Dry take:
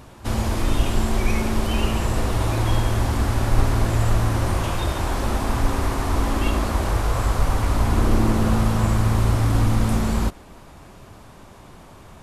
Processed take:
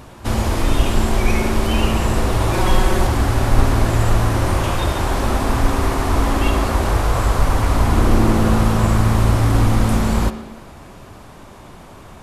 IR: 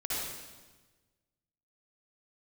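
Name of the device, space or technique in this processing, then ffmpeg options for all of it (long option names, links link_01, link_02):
filtered reverb send: -filter_complex "[0:a]asettb=1/sr,asplit=3[link_01][link_02][link_03];[link_01]atrim=end=2.534[link_04];[link_02]atrim=start=2.53:end=3.07,asetpts=PTS-STARTPTS,afade=type=in:duration=0.004:curve=qsin,afade=type=out:start_time=0.536:duration=0.004:curve=qsin,aecho=1:1:5.4:0.8,atrim=end_sample=23814[link_05];[link_03]atrim=start=3.066[link_06];[link_04][link_05]acrossfade=duration=0.004:curve1=hsin:curve2=qsin[link_07];[link_07][link_06]acrossfade=duration=0.004:curve1=qsin:curve2=hsin,asplit=2[link_08][link_09];[link_09]highpass=160,lowpass=4100[link_10];[1:a]atrim=start_sample=2205[link_11];[link_10][link_11]afir=irnorm=-1:irlink=0,volume=-15dB[link_12];[link_08][link_12]amix=inputs=2:normalize=0,volume=4dB"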